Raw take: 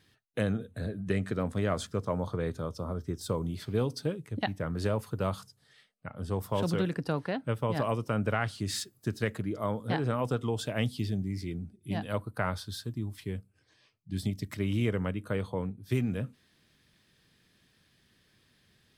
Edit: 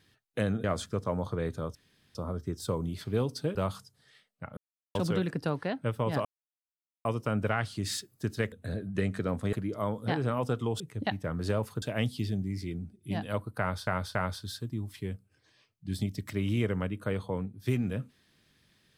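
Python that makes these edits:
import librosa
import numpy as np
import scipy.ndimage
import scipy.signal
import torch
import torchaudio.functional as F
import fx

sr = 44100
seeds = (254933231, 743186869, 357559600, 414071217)

y = fx.edit(x, sr, fx.move(start_s=0.64, length_s=1.01, to_s=9.35),
    fx.insert_room_tone(at_s=2.76, length_s=0.4),
    fx.move(start_s=4.16, length_s=1.02, to_s=10.62),
    fx.silence(start_s=6.2, length_s=0.38),
    fx.insert_silence(at_s=7.88, length_s=0.8),
    fx.repeat(start_s=12.39, length_s=0.28, count=3), tone=tone)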